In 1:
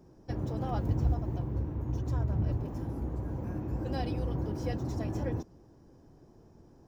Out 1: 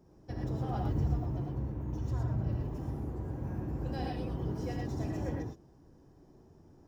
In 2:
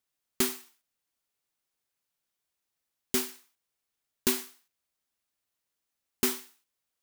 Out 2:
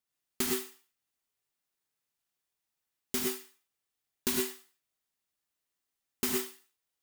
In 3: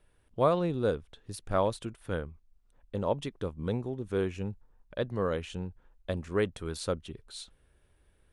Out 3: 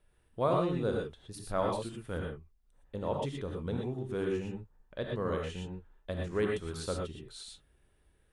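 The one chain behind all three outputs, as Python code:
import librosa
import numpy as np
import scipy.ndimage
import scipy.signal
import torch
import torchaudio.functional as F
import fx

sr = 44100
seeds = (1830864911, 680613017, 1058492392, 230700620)

y = fx.rev_gated(x, sr, seeds[0], gate_ms=140, shape='rising', drr_db=-0.5)
y = y * librosa.db_to_amplitude(-5.0)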